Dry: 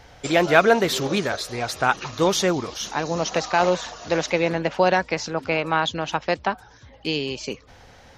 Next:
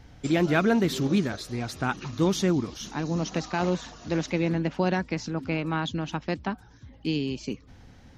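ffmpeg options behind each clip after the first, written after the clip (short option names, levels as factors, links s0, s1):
-af "lowshelf=f=380:t=q:w=1.5:g=9.5,volume=0.376"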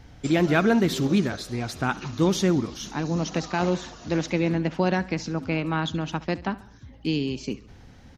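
-af "aecho=1:1:69|138|207|276:0.112|0.055|0.0269|0.0132,volume=1.26"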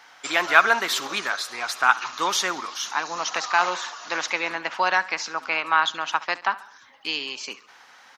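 -af "highpass=f=1100:t=q:w=1.9,volume=2.11"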